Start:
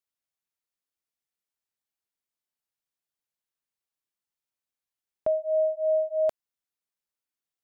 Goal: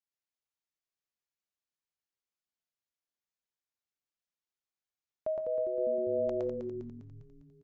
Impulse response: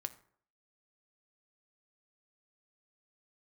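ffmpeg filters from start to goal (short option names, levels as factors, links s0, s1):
-filter_complex "[0:a]asplit=9[s0][s1][s2][s3][s4][s5][s6][s7][s8];[s1]adelay=201,afreqshift=-130,volume=0.501[s9];[s2]adelay=402,afreqshift=-260,volume=0.295[s10];[s3]adelay=603,afreqshift=-390,volume=0.174[s11];[s4]adelay=804,afreqshift=-520,volume=0.104[s12];[s5]adelay=1005,afreqshift=-650,volume=0.061[s13];[s6]adelay=1206,afreqshift=-780,volume=0.0359[s14];[s7]adelay=1407,afreqshift=-910,volume=0.0211[s15];[s8]adelay=1608,afreqshift=-1040,volume=0.0124[s16];[s0][s9][s10][s11][s12][s13][s14][s15][s16]amix=inputs=9:normalize=0,asplit=2[s17][s18];[1:a]atrim=start_sample=2205,adelay=114[s19];[s18][s19]afir=irnorm=-1:irlink=0,volume=1.06[s20];[s17][s20]amix=inputs=2:normalize=0,aresample=16000,aresample=44100,volume=0.376"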